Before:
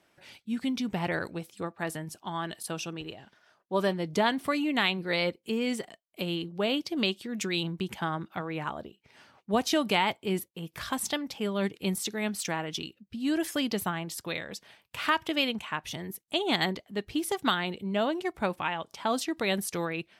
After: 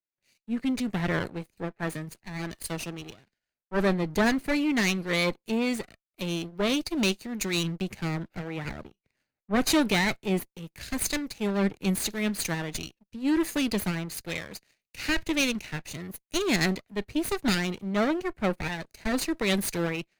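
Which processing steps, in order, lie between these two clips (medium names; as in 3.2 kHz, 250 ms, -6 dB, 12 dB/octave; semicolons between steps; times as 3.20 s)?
comb filter that takes the minimum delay 0.46 ms; waveshaping leveller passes 2; three bands expanded up and down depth 70%; trim -3.5 dB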